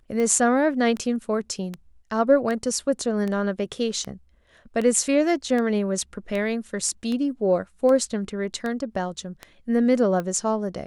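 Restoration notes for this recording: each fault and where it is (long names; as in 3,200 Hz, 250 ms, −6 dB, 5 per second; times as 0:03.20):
scratch tick 78 rpm −17 dBFS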